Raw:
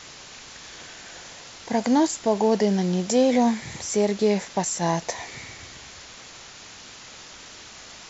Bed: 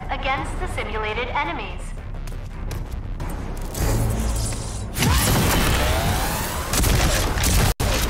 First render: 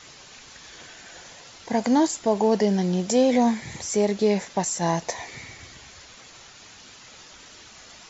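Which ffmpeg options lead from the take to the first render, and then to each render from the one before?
-af "afftdn=nr=6:nf=-44"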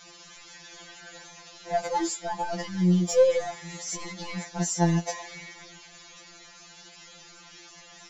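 -af "asoftclip=type=tanh:threshold=-14dB,afftfilt=real='re*2.83*eq(mod(b,8),0)':imag='im*2.83*eq(mod(b,8),0)':win_size=2048:overlap=0.75"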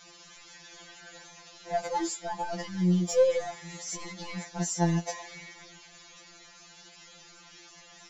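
-af "volume=-3dB"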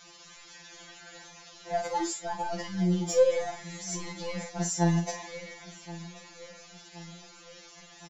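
-filter_complex "[0:a]asplit=2[a][b];[b]adelay=47,volume=-9dB[c];[a][c]amix=inputs=2:normalize=0,asplit=2[d][e];[e]adelay=1073,lowpass=f=4k:p=1,volume=-17dB,asplit=2[f][g];[g]adelay=1073,lowpass=f=4k:p=1,volume=0.54,asplit=2[h][i];[i]adelay=1073,lowpass=f=4k:p=1,volume=0.54,asplit=2[j][k];[k]adelay=1073,lowpass=f=4k:p=1,volume=0.54,asplit=2[l][m];[m]adelay=1073,lowpass=f=4k:p=1,volume=0.54[n];[d][f][h][j][l][n]amix=inputs=6:normalize=0"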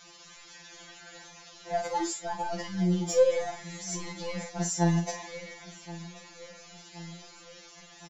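-filter_complex "[0:a]asettb=1/sr,asplit=3[a][b][c];[a]atrim=end=6.634[d];[b]atrim=start=6.63:end=7.45,asetpts=PTS-STARTPTS,afade=t=in:d=0.004:c=qsin,afade=t=out:st=0.816:d=0.004:c=qsin,asplit=2[e][f];[f]adelay=30,volume=-7dB[g];[e][g]amix=inputs=2:normalize=0,atrim=end_sample=36162[h];[c]atrim=start=7.446[i];[d][h]acrossfade=d=0.004:c1=hsin:c2=qsin[j];[j][i]acrossfade=d=0.004:c1=qsin:c2=hsin"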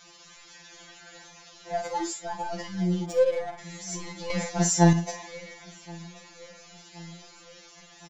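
-filter_complex "[0:a]asplit=3[a][b][c];[a]afade=t=out:st=3.05:d=0.02[d];[b]adynamicsmooth=sensitivity=5:basefreq=1.7k,afade=t=in:st=3.05:d=0.02,afade=t=out:st=3.57:d=0.02[e];[c]afade=t=in:st=3.57:d=0.02[f];[d][e][f]amix=inputs=3:normalize=0,asplit=3[g][h][i];[g]atrim=end=4.302[j];[h]atrim=start=4.298:end=4.932,asetpts=PTS-STARTPTS,volume=7dB[k];[i]atrim=start=4.928[l];[j][k]acrossfade=d=0.004:c1=hsin:c2=hsin[m];[m][l]acrossfade=d=0.004:c1=hsin:c2=hsin"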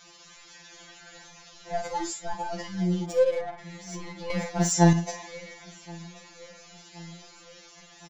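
-filter_complex "[0:a]asplit=3[a][b][c];[a]afade=t=out:st=1:d=0.02[d];[b]asubboost=boost=5:cutoff=140,afade=t=in:st=1:d=0.02,afade=t=out:st=2.33:d=0.02[e];[c]afade=t=in:st=2.33:d=0.02[f];[d][e][f]amix=inputs=3:normalize=0,asettb=1/sr,asplit=3[g][h][i];[g]atrim=end=3.414[j];[h]atrim=start=3.41:end=4.72,asetpts=PTS-STARTPTS,afade=t=in:d=0.004:c=qsin,afade=t=out:st=1.306:d=0.004:c=qsin,adynamicsmooth=sensitivity=3:basefreq=4.5k[k];[i]atrim=start=4.716[l];[j][k]acrossfade=d=0.004:c1=hsin:c2=qsin[m];[m][l]acrossfade=d=0.004:c1=qsin:c2=hsin"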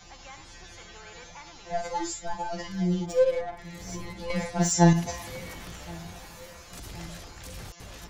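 -filter_complex "[1:a]volume=-24dB[a];[0:a][a]amix=inputs=2:normalize=0"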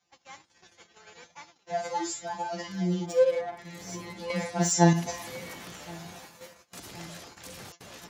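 -af "agate=range=-25dB:threshold=-44dB:ratio=16:detection=peak,highpass=160"

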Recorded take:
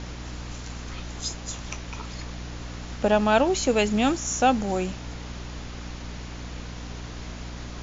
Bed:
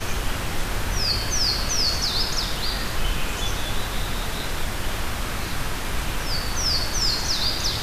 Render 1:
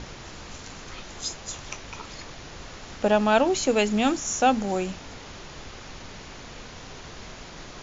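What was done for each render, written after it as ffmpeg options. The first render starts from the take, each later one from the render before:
-af "bandreject=f=60:t=h:w=6,bandreject=f=120:t=h:w=6,bandreject=f=180:t=h:w=6,bandreject=f=240:t=h:w=6,bandreject=f=300:t=h:w=6"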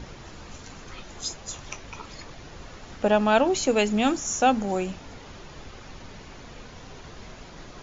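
-af "afftdn=nr=6:nf=-43"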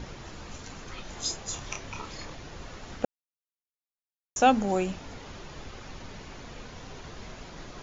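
-filter_complex "[0:a]asettb=1/sr,asplit=3[a][b][c];[a]atrim=end=1.024[d];[b]atrim=start=1.02:end=2.36,asetpts=PTS-STARTPTS,afade=t=in:d=0.004:c=qsin,afade=t=out:st=1.336:d=0.004:c=qsin,asplit=2[e][f];[f]adelay=29,volume=-5dB[g];[e][g]amix=inputs=2:normalize=0,atrim=end_sample=59094[h];[c]atrim=start=2.356[i];[d][h]acrossfade=d=0.004:c1=hsin:c2=qsin[j];[j][i]acrossfade=d=0.004:c1=qsin:c2=hsin,asplit=3[k][l][m];[k]atrim=end=3.05,asetpts=PTS-STARTPTS,afade=t=out:st=3.046:d=0.004:c=hsin[n];[l]atrim=start=3.05:end=4.36,asetpts=PTS-STARTPTS,volume=0[o];[m]atrim=start=4.36,asetpts=PTS-STARTPTS,afade=t=in:d=0.004:c=hsin[p];[n][o][p]concat=n=3:v=0:a=1"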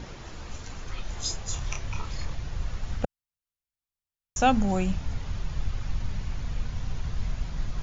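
-af "asubboost=boost=9:cutoff=120"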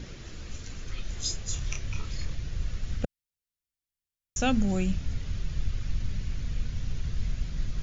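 -af "equalizer=f=890:w=1.3:g=-12.5"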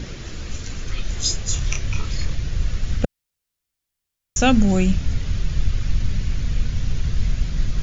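-af "volume=9.5dB"

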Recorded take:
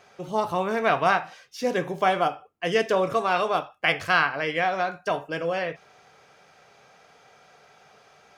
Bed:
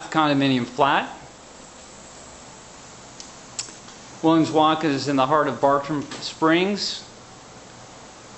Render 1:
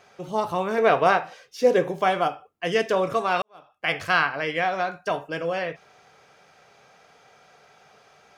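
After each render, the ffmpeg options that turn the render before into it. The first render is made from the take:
-filter_complex "[0:a]asettb=1/sr,asplit=3[a][b][c];[a]atrim=end=0.784[d];[b]atrim=start=0.78:end=1.91,asetpts=PTS-STARTPTS,afade=t=in:d=0.004:c=qsin,afade=t=out:st=1.126:d=0.004:c=qsin,equalizer=f=470:t=o:w=0.77:g=9[e];[c]atrim=start=1.906[f];[d][e]acrossfade=d=0.004:c1=hsin:c2=qsin[g];[g][f]acrossfade=d=0.004:c1=qsin:c2=hsin,asplit=2[h][i];[h]atrim=end=3.42,asetpts=PTS-STARTPTS,afade=t=out:st=3.416:d=0.004:c=hsin[j];[i]atrim=start=3.42,asetpts=PTS-STARTPTS,afade=t=in:d=0.54:c=qua[k];[j][k]concat=n=2:v=0:a=1"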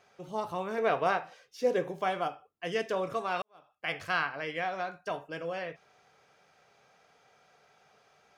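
-af "volume=-9dB"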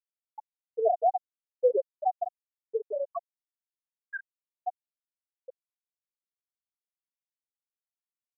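-af "afftfilt=real='re*gte(hypot(re,im),0.316)':imag='im*gte(hypot(re,im),0.316)':win_size=1024:overlap=0.75,equalizer=f=740:t=o:w=1.3:g=8"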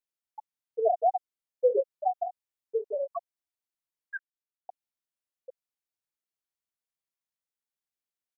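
-filter_complex "[0:a]asplit=3[a][b][c];[a]afade=t=out:st=1.7:d=0.02[d];[b]asplit=2[e][f];[f]adelay=22,volume=-6.5dB[g];[e][g]amix=inputs=2:normalize=0,afade=t=in:st=1.7:d=0.02,afade=t=out:st=3.11:d=0.02[h];[c]afade=t=in:st=3.11:d=0.02[i];[d][h][i]amix=inputs=3:normalize=0,asplit=3[j][k][l];[j]atrim=end=4.19,asetpts=PTS-STARTPTS,afade=t=out:st=4.186:d=0.004:c=hsin[m];[k]atrim=start=4.19:end=4.69,asetpts=PTS-STARTPTS,volume=0[n];[l]atrim=start=4.69,asetpts=PTS-STARTPTS,afade=t=in:d=0.004:c=hsin[o];[m][n][o]concat=n=3:v=0:a=1"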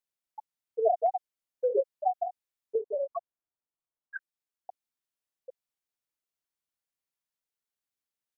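-filter_complex "[0:a]asettb=1/sr,asplit=3[a][b][c];[a]atrim=end=1.064[d];[b]atrim=start=1.06:end=1.73,asetpts=PTS-STARTPTS,afade=t=in:d=0.004:c=qsin,afade=t=out:st=0.666:d=0.004:c=qsin,acompressor=threshold=-26dB:ratio=2:attack=3.2:release=140:knee=1:detection=peak[e];[c]atrim=start=1.726[f];[d][e]acrossfade=d=0.004:c1=hsin:c2=qsin[g];[g][f]acrossfade=d=0.004:c1=qsin:c2=hsin,asettb=1/sr,asplit=3[h][i][j];[h]atrim=end=2.754[k];[i]atrim=start=2.75:end=4.16,asetpts=PTS-STARTPTS,afade=t=in:d=0.004:c=qsin,afade=t=out:st=1.406:d=0.004:c=qsin,lowpass=f=1.4k:w=0.5412,lowpass=f=1.4k:w=1.3066[l];[j]atrim=start=4.156[m];[k][l]acrossfade=d=0.004:c1=hsin:c2=qsin[n];[n][m]acrossfade=d=0.004:c1=qsin:c2=hsin"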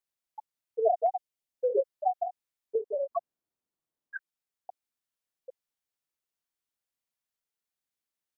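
-filter_complex "[0:a]asettb=1/sr,asplit=3[a][b][c];[a]atrim=end=1.084[d];[b]atrim=start=1.08:end=1.7,asetpts=PTS-STARTPTS,afade=t=in:d=0.004:c=qsin,afade=t=out:st=0.616:d=0.004:c=qsin,equalizer=f=1.3k:t=o:w=0.77:g=-6[e];[c]atrim=start=1.696[f];[d][e]acrossfade=d=0.004:c1=hsin:c2=qsin[g];[g][f]acrossfade=d=0.004:c1=qsin:c2=hsin,asettb=1/sr,asplit=3[h][i][j];[h]atrim=end=3.114[k];[i]atrim=start=3.11:end=4.16,asetpts=PTS-STARTPTS,afade=t=in:d=0.004:c=qsin,afade=t=out:st=1.046:d=0.004:c=qsin,equalizer=f=250:w=0.49:g=9.5[l];[j]atrim=start=4.156[m];[k][l]acrossfade=d=0.004:c1=hsin:c2=qsin[n];[n][m]acrossfade=d=0.004:c1=qsin:c2=hsin"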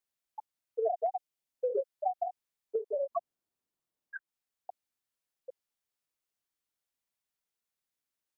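-filter_complex "[0:a]acrossover=split=290|1300[a][b][c];[a]acompressor=threshold=-52dB:ratio=4[d];[b]acompressor=threshold=-29dB:ratio=4[e];[c]acompressor=threshold=-46dB:ratio=4[f];[d][e][f]amix=inputs=3:normalize=0"

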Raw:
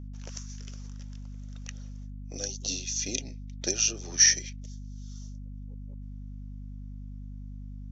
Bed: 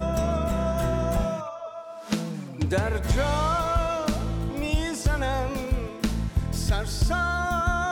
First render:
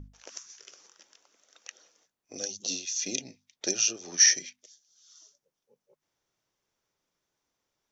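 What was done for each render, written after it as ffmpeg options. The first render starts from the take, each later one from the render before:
-af "bandreject=f=50:t=h:w=6,bandreject=f=100:t=h:w=6,bandreject=f=150:t=h:w=6,bandreject=f=200:t=h:w=6,bandreject=f=250:t=h:w=6"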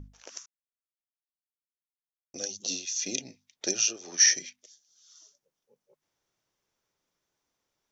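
-filter_complex "[0:a]asettb=1/sr,asplit=3[a][b][c];[a]atrim=end=3.864[d];[b]atrim=start=3.86:end=4.33,asetpts=PTS-STARTPTS,afade=t=in:d=0.004:c=qsin,afade=t=out:st=0.466:d=0.004:c=qsin,bass=f=250:g=-6,treble=f=4k:g=-1[e];[c]atrim=start=4.326[f];[d][e]acrossfade=d=0.004:c1=hsin:c2=qsin[g];[g][f]acrossfade=d=0.004:c1=qsin:c2=hsin,asplit=3[h][i][j];[h]atrim=end=0.46,asetpts=PTS-STARTPTS,afade=t=out:st=0.456:d=0.004:c=hsin[k];[i]atrim=start=0.46:end=2.34,asetpts=PTS-STARTPTS,volume=0[l];[j]atrim=start=2.34,asetpts=PTS-STARTPTS,afade=t=in:d=0.004:c=hsin[m];[k][l][m]concat=n=3:v=0:a=1"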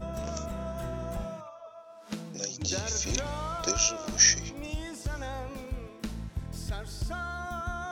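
-filter_complex "[1:a]volume=-10.5dB[a];[0:a][a]amix=inputs=2:normalize=0"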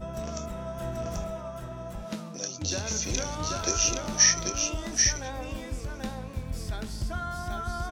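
-filter_complex "[0:a]asplit=2[a][b];[b]adelay=23,volume=-12dB[c];[a][c]amix=inputs=2:normalize=0,aecho=1:1:785:0.668"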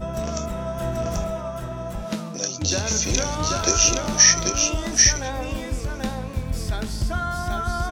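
-af "volume=7.5dB,alimiter=limit=-3dB:level=0:latency=1"

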